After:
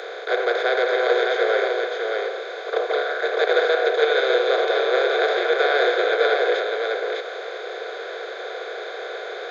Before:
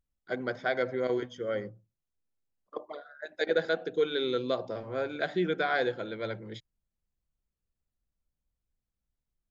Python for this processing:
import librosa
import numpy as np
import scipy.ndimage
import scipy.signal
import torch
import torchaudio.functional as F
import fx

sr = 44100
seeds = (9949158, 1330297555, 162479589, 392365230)

p1 = fx.bin_compress(x, sr, power=0.2)
p2 = scipy.signal.sosfilt(scipy.signal.butter(12, 390.0, 'highpass', fs=sr, output='sos'), p1)
p3 = p2 + fx.echo_single(p2, sr, ms=605, db=-3.5, dry=0)
y = p3 * 10.0 ** (1.5 / 20.0)